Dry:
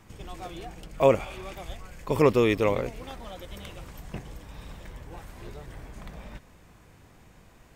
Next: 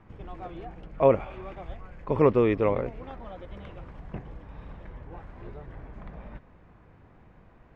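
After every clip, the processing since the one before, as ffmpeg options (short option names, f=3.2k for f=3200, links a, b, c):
-af "lowpass=1.7k"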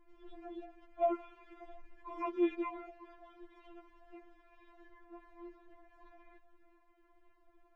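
-af "afftfilt=real='re*4*eq(mod(b,16),0)':imag='im*4*eq(mod(b,16),0)':win_size=2048:overlap=0.75,volume=-8.5dB"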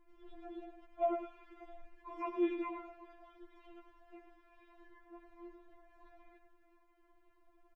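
-af "aecho=1:1:105|210:0.355|0.0532,volume=-2dB"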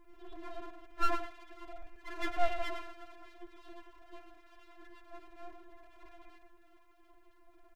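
-af "aeval=exprs='abs(val(0))':c=same,volume=7dB"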